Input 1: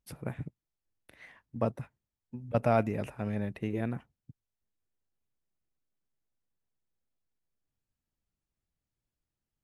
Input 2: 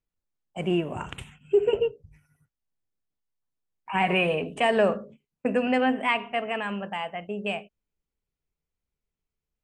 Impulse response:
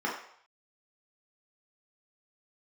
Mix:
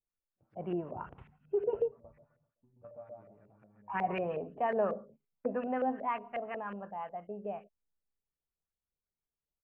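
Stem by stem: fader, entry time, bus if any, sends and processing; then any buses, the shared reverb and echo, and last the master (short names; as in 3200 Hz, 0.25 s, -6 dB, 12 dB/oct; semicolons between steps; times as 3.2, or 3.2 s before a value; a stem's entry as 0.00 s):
-5.0 dB, 0.30 s, send -19.5 dB, echo send -3.5 dB, compressor 2.5:1, threshold -37 dBFS, peak gain reduction 11.5 dB; flange 0.3 Hz, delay 8.7 ms, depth 3.6 ms, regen +38%; resonator 590 Hz, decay 0.38 s, mix 80%; auto duck -13 dB, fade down 1.05 s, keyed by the second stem
-12.0 dB, 0.00 s, no send, no echo send, dry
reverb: on, RT60 0.65 s, pre-delay 3 ms
echo: feedback echo 0.129 s, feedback 34%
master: LFO low-pass saw up 5.5 Hz 510–1800 Hz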